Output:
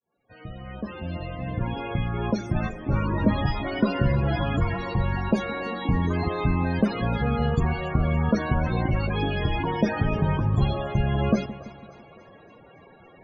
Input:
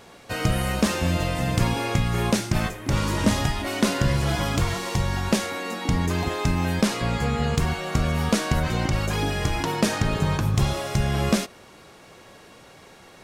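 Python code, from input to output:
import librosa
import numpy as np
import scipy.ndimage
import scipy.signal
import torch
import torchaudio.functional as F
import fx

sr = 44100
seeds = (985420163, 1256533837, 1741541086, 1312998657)

y = fx.fade_in_head(x, sr, length_s=3.08)
y = fx.spec_topn(y, sr, count=32)
y = fx.echo_split(y, sr, split_hz=500.0, low_ms=167, high_ms=282, feedback_pct=52, wet_db=-15.0)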